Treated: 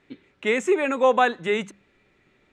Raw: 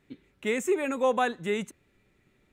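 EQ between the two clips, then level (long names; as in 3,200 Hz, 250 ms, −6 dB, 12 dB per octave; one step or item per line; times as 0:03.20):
high-frequency loss of the air 91 metres
low-shelf EQ 280 Hz −9 dB
mains-hum notches 50/100/150/200 Hz
+8.5 dB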